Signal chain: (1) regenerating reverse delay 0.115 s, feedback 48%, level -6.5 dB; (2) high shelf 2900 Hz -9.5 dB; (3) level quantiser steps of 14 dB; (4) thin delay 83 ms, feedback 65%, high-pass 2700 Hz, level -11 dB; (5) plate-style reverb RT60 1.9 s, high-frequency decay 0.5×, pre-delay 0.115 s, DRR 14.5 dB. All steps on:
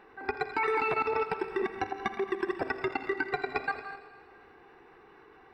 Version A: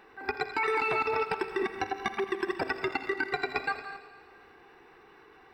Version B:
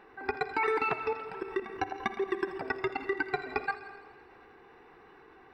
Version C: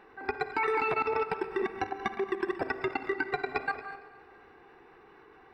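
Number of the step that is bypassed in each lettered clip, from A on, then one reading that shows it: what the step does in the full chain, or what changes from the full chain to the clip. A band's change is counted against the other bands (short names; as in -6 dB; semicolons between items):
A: 2, 4 kHz band +5.5 dB; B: 1, loudness change -1.5 LU; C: 4, echo-to-direct -12.0 dB to -14.5 dB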